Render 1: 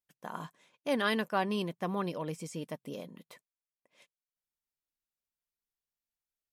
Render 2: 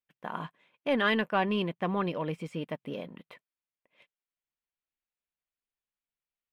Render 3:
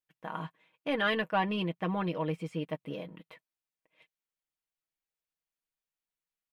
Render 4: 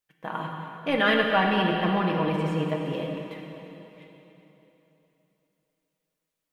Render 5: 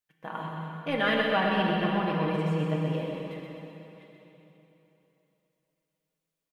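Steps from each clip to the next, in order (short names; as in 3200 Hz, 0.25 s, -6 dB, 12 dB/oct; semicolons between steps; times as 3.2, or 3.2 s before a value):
sample leveller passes 1; resonant high shelf 4200 Hz -14 dB, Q 1.5
comb 6.3 ms, depth 63%; gain -3 dB
plate-style reverb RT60 3.4 s, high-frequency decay 0.9×, DRR 0.5 dB; gain +5.5 dB
resonator 160 Hz, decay 0.85 s, harmonics odd, mix 60%; on a send: feedback echo 0.126 s, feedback 58%, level -6 dB; on the sum: gain +3 dB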